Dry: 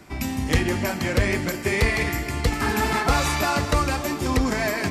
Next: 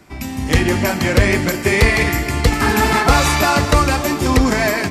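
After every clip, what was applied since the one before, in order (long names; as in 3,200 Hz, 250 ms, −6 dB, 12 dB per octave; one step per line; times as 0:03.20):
automatic gain control gain up to 9.5 dB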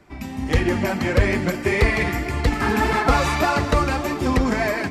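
high-shelf EQ 4,300 Hz −10.5 dB
flanger 1.7 Hz, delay 1.6 ms, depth 4.2 ms, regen +55%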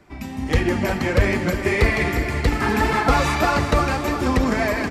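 repeating echo 354 ms, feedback 56%, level −10.5 dB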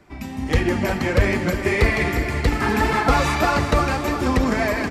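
no processing that can be heard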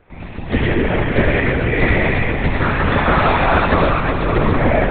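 comb and all-pass reverb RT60 1.2 s, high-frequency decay 0.85×, pre-delay 40 ms, DRR −3 dB
linear-prediction vocoder at 8 kHz whisper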